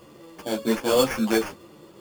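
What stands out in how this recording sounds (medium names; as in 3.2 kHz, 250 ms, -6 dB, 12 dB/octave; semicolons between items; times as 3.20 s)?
aliases and images of a low sample rate 3.9 kHz, jitter 0%; a shimmering, thickened sound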